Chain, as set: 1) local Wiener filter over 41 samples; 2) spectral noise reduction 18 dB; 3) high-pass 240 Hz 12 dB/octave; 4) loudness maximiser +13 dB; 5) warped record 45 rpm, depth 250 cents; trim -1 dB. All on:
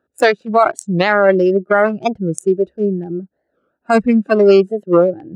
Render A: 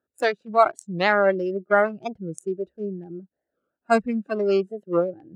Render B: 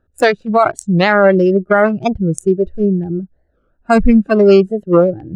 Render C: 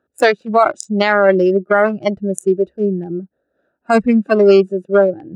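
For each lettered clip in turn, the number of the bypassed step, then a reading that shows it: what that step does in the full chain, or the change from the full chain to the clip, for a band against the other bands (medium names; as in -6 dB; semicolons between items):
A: 4, crest factor change +7.0 dB; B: 3, 125 Hz band +4.5 dB; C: 5, 125 Hz band -2.0 dB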